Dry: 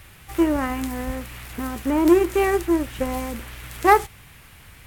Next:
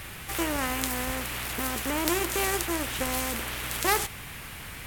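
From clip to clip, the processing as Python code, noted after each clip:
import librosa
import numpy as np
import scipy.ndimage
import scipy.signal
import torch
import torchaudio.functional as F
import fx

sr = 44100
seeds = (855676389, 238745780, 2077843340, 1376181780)

y = fx.spectral_comp(x, sr, ratio=2.0)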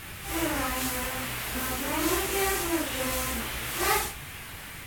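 y = fx.phase_scramble(x, sr, seeds[0], window_ms=200)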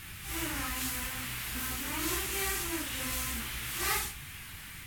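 y = fx.peak_eq(x, sr, hz=560.0, db=-12.0, octaves=1.6)
y = y * 10.0 ** (-3.0 / 20.0)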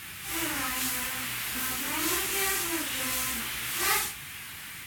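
y = fx.highpass(x, sr, hz=250.0, slope=6)
y = y * 10.0 ** (5.0 / 20.0)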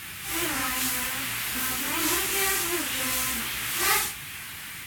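y = fx.record_warp(x, sr, rpm=78.0, depth_cents=100.0)
y = y * 10.0 ** (3.0 / 20.0)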